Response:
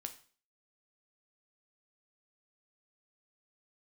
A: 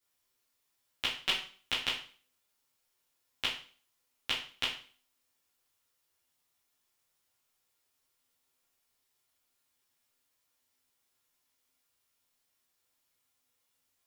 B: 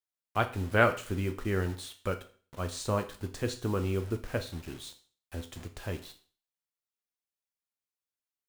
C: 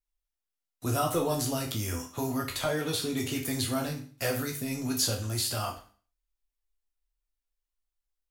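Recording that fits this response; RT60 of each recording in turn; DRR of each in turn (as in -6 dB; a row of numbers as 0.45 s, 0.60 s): B; 0.45 s, 0.45 s, 0.45 s; -8.5 dB, 6.5 dB, 0.0 dB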